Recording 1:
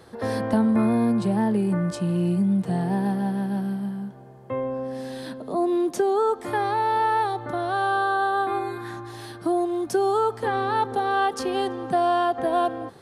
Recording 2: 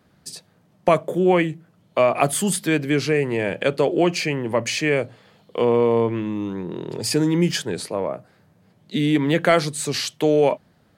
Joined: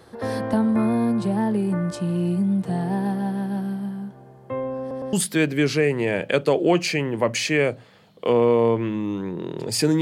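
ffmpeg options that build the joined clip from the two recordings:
-filter_complex "[0:a]apad=whole_dur=10.01,atrim=end=10.01,asplit=3[a][b][c];[a]atrim=end=4.912[d];[b]atrim=start=4.798:end=4.912[e];[c]atrim=start=4.798:end=4.912[f];[1:a]atrim=start=2.448:end=7.33[g];[d][e]acrossfade=d=0.004:c1=hsin:c2=hsin[h];[h][f]acrossfade=d=0.004:c1=hsin:c2=hsin[i];[i][g]acrossfade=d=0.004:c1=hsin:c2=hsin"

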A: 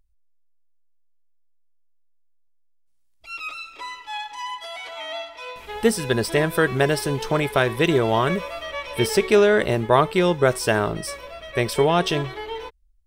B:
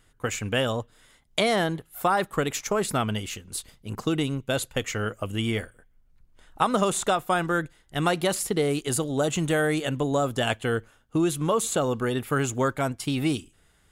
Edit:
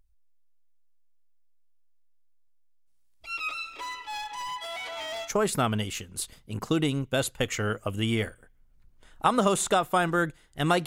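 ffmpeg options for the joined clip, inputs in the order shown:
-filter_complex "[0:a]asettb=1/sr,asplit=3[a][b][c];[a]atrim=end=3.794[d];[b]atrim=start=3.79:end=5.32,asetpts=PTS-STARTPTS,afade=t=in:d=0.004:c=qsin,afade=t=out:st=1.526:d=0.004:c=qsin,asoftclip=type=hard:threshold=-32.5dB[e];[c]atrim=start=5.316[f];[d][e]acrossfade=d=0.004:c1=hsin:c2=qsin[g];[g][f]acrossfade=d=0.004:c1=qsin:c2=hsin,apad=whole_dur=10.86,atrim=end=10.86,atrim=end=5.32,asetpts=PTS-STARTPTS[h];[1:a]atrim=start=2.58:end=8.22,asetpts=PTS-STARTPTS[i];[h][i]acrossfade=d=0.1:c1=tri:c2=tri"

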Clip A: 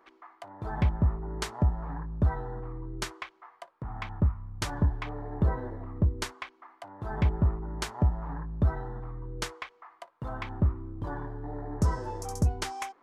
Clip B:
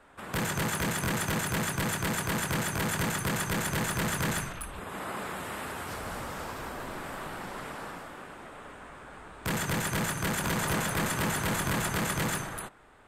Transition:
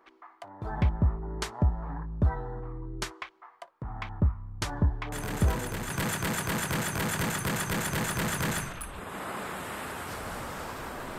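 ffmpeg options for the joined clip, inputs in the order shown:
-filter_complex "[1:a]asplit=2[a][b];[0:a]apad=whole_dur=11.18,atrim=end=11.18,atrim=end=5.902[c];[b]atrim=start=1.698:end=6.98[d];[a]atrim=start=0.92:end=1.7,asetpts=PTS-STARTPTS,volume=-6.5dB,afade=t=in:d=0.004:c=hsin,afade=t=out:st=0.776:d=0.004:c=hsin,adelay=5120[e];[c][d]acrossfade=d=0.004:c1=hsin:c2=hsin[f];[f][e]amix=inputs=2:normalize=0"

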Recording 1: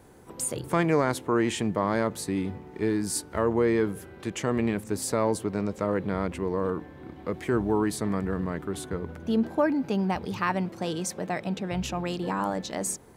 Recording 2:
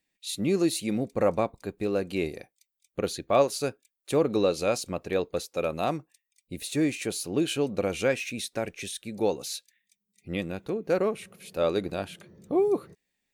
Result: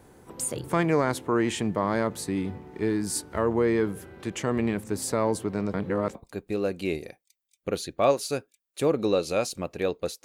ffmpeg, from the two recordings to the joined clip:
-filter_complex "[0:a]apad=whole_dur=10.24,atrim=end=10.24,asplit=2[a][b];[a]atrim=end=5.742[c];[b]atrim=start=5.738:end=6.152,asetpts=PTS-STARTPTS,areverse[d];[1:a]atrim=start=1.458:end=5.55[e];[c][d]acrossfade=d=0.004:c1=hsin:c2=hsin[f];[f][e]acrossfade=d=0.004:c1=hsin:c2=hsin"

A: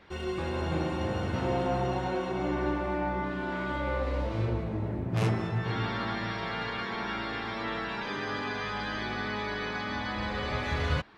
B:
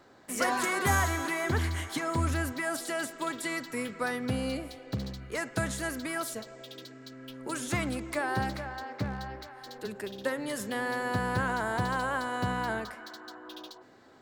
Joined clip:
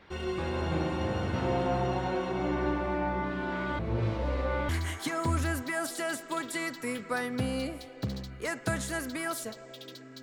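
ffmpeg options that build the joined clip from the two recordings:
-filter_complex "[0:a]apad=whole_dur=10.22,atrim=end=10.22,asplit=2[a][b];[a]atrim=end=3.792[c];[b]atrim=start=3.788:end=4.692,asetpts=PTS-STARTPTS,areverse[d];[1:a]atrim=start=1.588:end=7.12[e];[c][d]acrossfade=d=0.004:c1=hsin:c2=hsin[f];[f][e]acrossfade=d=0.004:c1=hsin:c2=hsin"

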